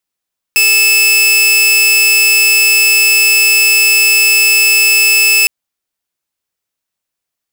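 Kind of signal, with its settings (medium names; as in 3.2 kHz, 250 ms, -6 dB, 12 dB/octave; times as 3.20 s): tone saw 2.62 kHz -4 dBFS 4.91 s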